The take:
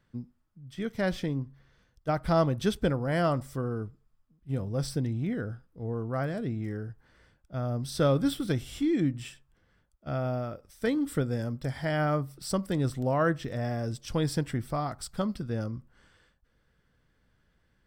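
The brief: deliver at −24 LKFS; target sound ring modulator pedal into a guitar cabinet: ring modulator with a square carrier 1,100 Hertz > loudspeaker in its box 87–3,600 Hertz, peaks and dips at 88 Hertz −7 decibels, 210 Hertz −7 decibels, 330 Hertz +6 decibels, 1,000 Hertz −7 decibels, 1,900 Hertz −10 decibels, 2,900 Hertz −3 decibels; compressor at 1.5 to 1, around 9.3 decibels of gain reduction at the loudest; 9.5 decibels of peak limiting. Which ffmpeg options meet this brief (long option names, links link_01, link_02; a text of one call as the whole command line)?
ffmpeg -i in.wav -af "acompressor=threshold=-47dB:ratio=1.5,alimiter=level_in=7dB:limit=-24dB:level=0:latency=1,volume=-7dB,aeval=exprs='val(0)*sgn(sin(2*PI*1100*n/s))':channel_layout=same,highpass=87,equalizer=frequency=88:width_type=q:width=4:gain=-7,equalizer=frequency=210:width_type=q:width=4:gain=-7,equalizer=frequency=330:width_type=q:width=4:gain=6,equalizer=frequency=1000:width_type=q:width=4:gain=-7,equalizer=frequency=1900:width_type=q:width=4:gain=-10,equalizer=frequency=2900:width_type=q:width=4:gain=-3,lowpass=frequency=3600:width=0.5412,lowpass=frequency=3600:width=1.3066,volume=19.5dB" out.wav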